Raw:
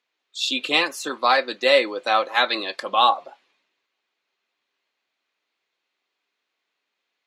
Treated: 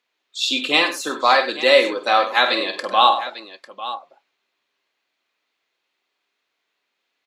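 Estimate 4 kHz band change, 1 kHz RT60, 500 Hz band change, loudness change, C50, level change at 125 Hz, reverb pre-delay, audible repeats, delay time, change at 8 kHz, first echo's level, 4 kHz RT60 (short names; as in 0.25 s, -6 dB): +3.5 dB, none, +3.5 dB, +3.5 dB, none, n/a, none, 3, 48 ms, n/a, -8.5 dB, none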